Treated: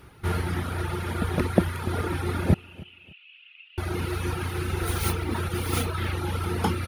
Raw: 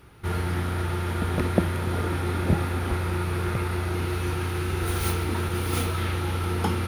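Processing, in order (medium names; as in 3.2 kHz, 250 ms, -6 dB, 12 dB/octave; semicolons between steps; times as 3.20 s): reverb removal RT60 1.2 s; 2.54–3.78 s: Butterworth band-pass 2.8 kHz, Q 6.2; on a send: feedback delay 293 ms, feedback 29%, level -21.5 dB; on the sum: trim +2 dB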